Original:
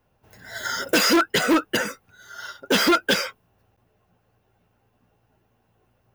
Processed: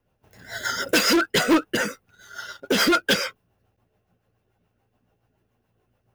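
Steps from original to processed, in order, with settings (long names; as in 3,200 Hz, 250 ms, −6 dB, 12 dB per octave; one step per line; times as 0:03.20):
leveller curve on the samples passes 1
rotating-speaker cabinet horn 7 Hz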